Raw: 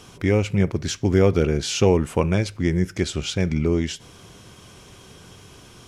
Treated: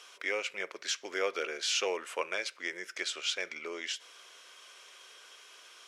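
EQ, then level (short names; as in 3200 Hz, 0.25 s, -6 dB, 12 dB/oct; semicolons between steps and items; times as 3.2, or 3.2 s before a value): HPF 630 Hz 24 dB/oct; LPF 3800 Hz 6 dB/oct; bell 800 Hz -12.5 dB 0.82 oct; 0.0 dB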